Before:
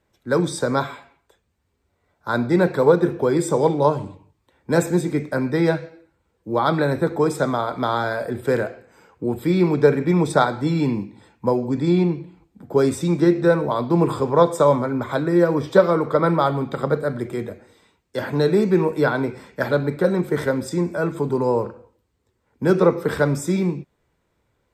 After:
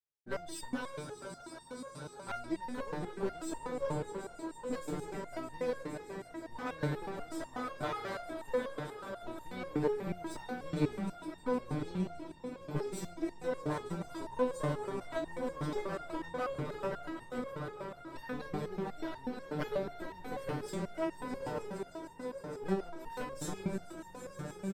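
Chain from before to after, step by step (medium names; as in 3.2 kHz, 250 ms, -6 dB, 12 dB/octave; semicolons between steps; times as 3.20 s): gate -44 dBFS, range -28 dB; compression 12:1, threshold -19 dBFS, peak gain reduction 12.5 dB; echo with a slow build-up 154 ms, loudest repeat 5, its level -13 dB; one-sided clip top -31 dBFS, bottom -11.5 dBFS; flange 0.26 Hz, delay 2.1 ms, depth 8.7 ms, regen +88%; harmony voices -12 st -11 dB; resonator arpeggio 8.2 Hz 150–910 Hz; trim +7 dB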